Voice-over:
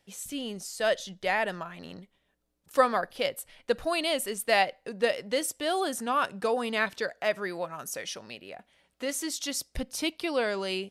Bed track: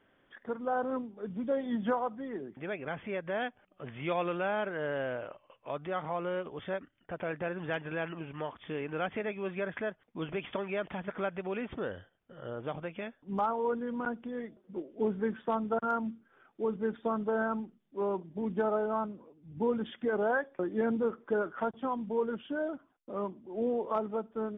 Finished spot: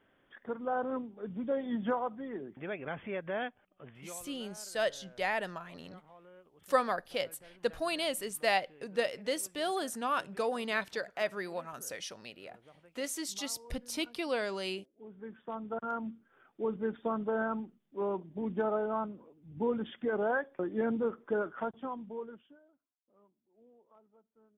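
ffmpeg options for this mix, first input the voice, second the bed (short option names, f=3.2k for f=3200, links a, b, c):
-filter_complex "[0:a]adelay=3950,volume=-5dB[a];[1:a]volume=19dB,afade=t=out:st=3.37:d=0.85:silence=0.0944061,afade=t=in:st=15.02:d=1.4:silence=0.0944061,afade=t=out:st=21.44:d=1.16:silence=0.0316228[b];[a][b]amix=inputs=2:normalize=0"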